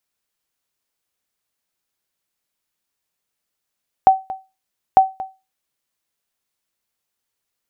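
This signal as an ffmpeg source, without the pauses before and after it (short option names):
-f lavfi -i "aevalsrc='0.794*(sin(2*PI*764*mod(t,0.9))*exp(-6.91*mod(t,0.9)/0.26)+0.133*sin(2*PI*764*max(mod(t,0.9)-0.23,0))*exp(-6.91*max(mod(t,0.9)-0.23,0)/0.26))':d=1.8:s=44100"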